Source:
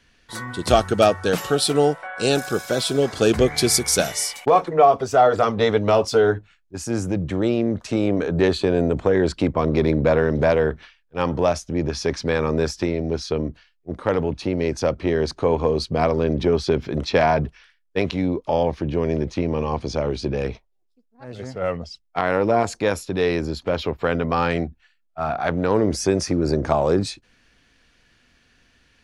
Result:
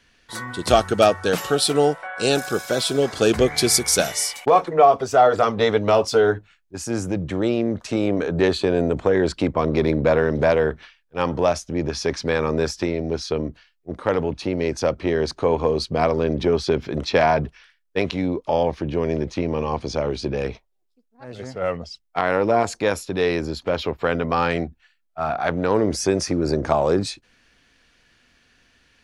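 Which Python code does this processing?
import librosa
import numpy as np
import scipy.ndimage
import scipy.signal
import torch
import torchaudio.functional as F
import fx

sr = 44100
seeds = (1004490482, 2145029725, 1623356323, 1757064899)

y = fx.low_shelf(x, sr, hz=260.0, db=-4.0)
y = y * 10.0 ** (1.0 / 20.0)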